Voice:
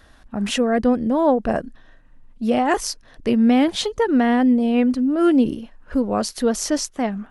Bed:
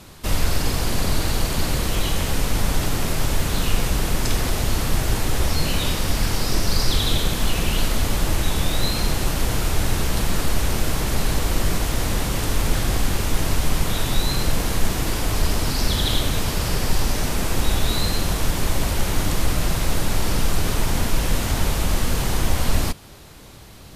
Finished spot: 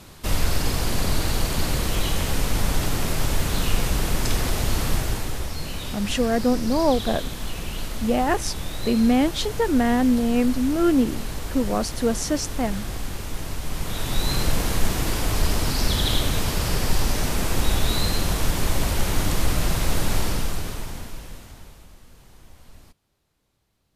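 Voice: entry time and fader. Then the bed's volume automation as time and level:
5.60 s, −3.0 dB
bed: 0:04.91 −1.5 dB
0:05.50 −9.5 dB
0:13.62 −9.5 dB
0:14.33 −1 dB
0:20.18 −1 dB
0:21.98 −28.5 dB

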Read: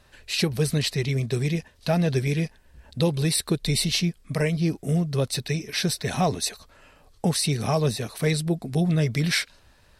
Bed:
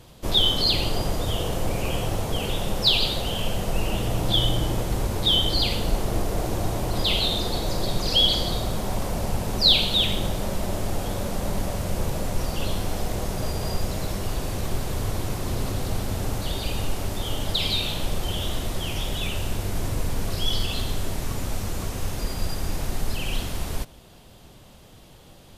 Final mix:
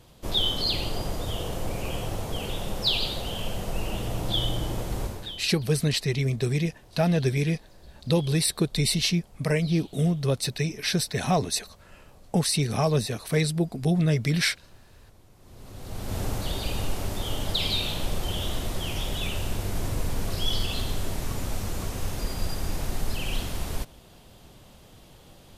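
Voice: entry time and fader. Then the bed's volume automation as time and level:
5.10 s, −0.5 dB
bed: 0:05.05 −5 dB
0:05.52 −28 dB
0:15.33 −28 dB
0:16.17 −2 dB

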